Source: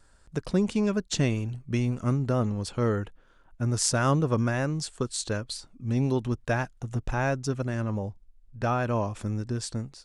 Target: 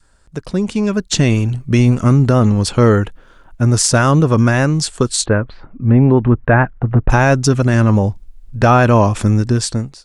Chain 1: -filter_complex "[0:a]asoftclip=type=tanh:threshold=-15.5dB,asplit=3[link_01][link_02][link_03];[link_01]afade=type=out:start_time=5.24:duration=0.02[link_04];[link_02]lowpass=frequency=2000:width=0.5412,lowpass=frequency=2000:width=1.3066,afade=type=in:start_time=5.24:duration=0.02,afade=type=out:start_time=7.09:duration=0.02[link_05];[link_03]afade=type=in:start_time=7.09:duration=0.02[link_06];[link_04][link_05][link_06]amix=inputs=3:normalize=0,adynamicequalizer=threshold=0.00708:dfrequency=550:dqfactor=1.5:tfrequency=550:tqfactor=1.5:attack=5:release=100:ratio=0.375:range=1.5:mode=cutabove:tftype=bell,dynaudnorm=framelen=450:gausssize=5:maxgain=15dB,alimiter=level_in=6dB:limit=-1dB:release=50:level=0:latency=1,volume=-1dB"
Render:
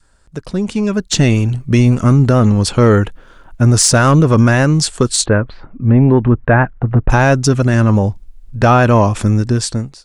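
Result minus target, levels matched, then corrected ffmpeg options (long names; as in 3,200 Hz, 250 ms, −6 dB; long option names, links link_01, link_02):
soft clipping: distortion +14 dB
-filter_complex "[0:a]asoftclip=type=tanh:threshold=-7dB,asplit=3[link_01][link_02][link_03];[link_01]afade=type=out:start_time=5.24:duration=0.02[link_04];[link_02]lowpass=frequency=2000:width=0.5412,lowpass=frequency=2000:width=1.3066,afade=type=in:start_time=5.24:duration=0.02,afade=type=out:start_time=7.09:duration=0.02[link_05];[link_03]afade=type=in:start_time=7.09:duration=0.02[link_06];[link_04][link_05][link_06]amix=inputs=3:normalize=0,adynamicequalizer=threshold=0.00708:dfrequency=550:dqfactor=1.5:tfrequency=550:tqfactor=1.5:attack=5:release=100:ratio=0.375:range=1.5:mode=cutabove:tftype=bell,dynaudnorm=framelen=450:gausssize=5:maxgain=15dB,alimiter=level_in=6dB:limit=-1dB:release=50:level=0:latency=1,volume=-1dB"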